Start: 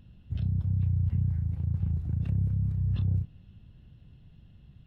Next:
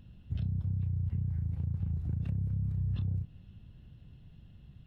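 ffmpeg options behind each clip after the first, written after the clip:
-af "acompressor=threshold=-29dB:ratio=6"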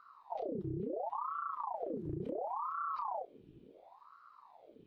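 -af "aeval=exprs='val(0)*sin(2*PI*740*n/s+740*0.7/0.71*sin(2*PI*0.71*n/s))':c=same,volume=-4dB"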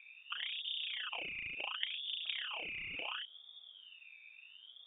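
-af "aeval=exprs='val(0)+0.000224*(sin(2*PI*60*n/s)+sin(2*PI*2*60*n/s)/2+sin(2*PI*3*60*n/s)/3+sin(2*PI*4*60*n/s)/4+sin(2*PI*5*60*n/s)/5)':c=same,aeval=exprs='0.0501*(cos(1*acos(clip(val(0)/0.0501,-1,1)))-cos(1*PI/2))+0.0224*(cos(3*acos(clip(val(0)/0.0501,-1,1)))-cos(3*PI/2))+0.00158*(cos(7*acos(clip(val(0)/0.0501,-1,1)))-cos(7*PI/2))':c=same,lowpass=f=3.1k:t=q:w=0.5098,lowpass=f=3.1k:t=q:w=0.6013,lowpass=f=3.1k:t=q:w=0.9,lowpass=f=3.1k:t=q:w=2.563,afreqshift=-3700,volume=7.5dB"

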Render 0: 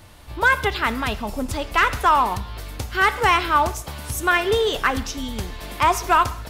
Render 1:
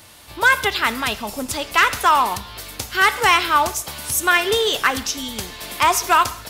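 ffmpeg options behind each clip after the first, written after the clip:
-af "highpass=f=170:p=1,highshelf=f=2.5k:g=9.5"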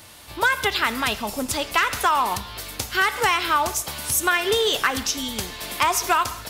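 -af "acompressor=threshold=-16dB:ratio=6"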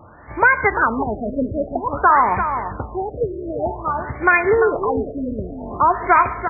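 -filter_complex "[0:a]asplit=2[a][b];[b]adelay=344,volume=-8dB,highshelf=f=4k:g=-7.74[c];[a][c]amix=inputs=2:normalize=0,afftfilt=real='re*lt(b*sr/1024,640*pow(2500/640,0.5+0.5*sin(2*PI*0.52*pts/sr)))':imag='im*lt(b*sr/1024,640*pow(2500/640,0.5+0.5*sin(2*PI*0.52*pts/sr)))':win_size=1024:overlap=0.75,volume=6.5dB"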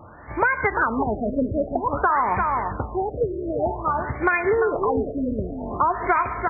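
-af "acompressor=threshold=-17dB:ratio=5"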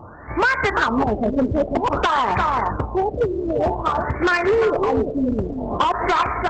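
-af "asoftclip=type=hard:threshold=-18dB,volume=5dB" -ar 48000 -c:a libopus -b:a 12k

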